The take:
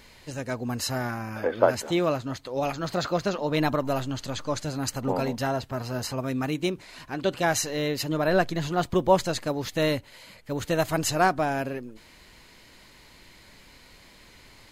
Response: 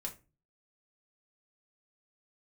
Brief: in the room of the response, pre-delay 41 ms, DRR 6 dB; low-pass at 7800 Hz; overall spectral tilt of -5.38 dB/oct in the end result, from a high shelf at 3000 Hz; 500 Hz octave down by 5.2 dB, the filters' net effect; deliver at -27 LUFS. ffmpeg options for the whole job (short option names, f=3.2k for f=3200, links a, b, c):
-filter_complex "[0:a]lowpass=7.8k,equalizer=f=500:t=o:g=-6.5,highshelf=f=3k:g=-9,asplit=2[a][b];[1:a]atrim=start_sample=2205,adelay=41[c];[b][c]afir=irnorm=-1:irlink=0,volume=-4.5dB[d];[a][d]amix=inputs=2:normalize=0,volume=2.5dB"